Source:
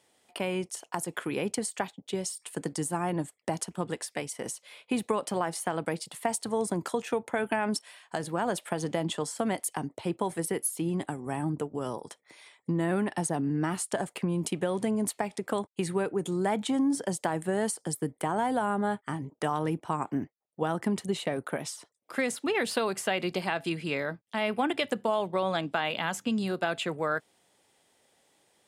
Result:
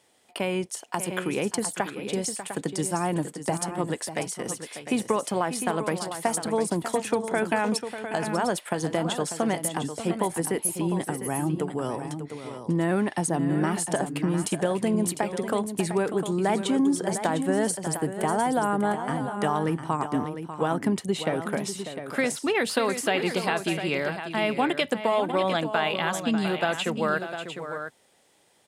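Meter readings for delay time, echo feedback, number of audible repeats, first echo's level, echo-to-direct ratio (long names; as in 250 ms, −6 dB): 594 ms, repeats not evenly spaced, 2, −11.0 dB, −7.0 dB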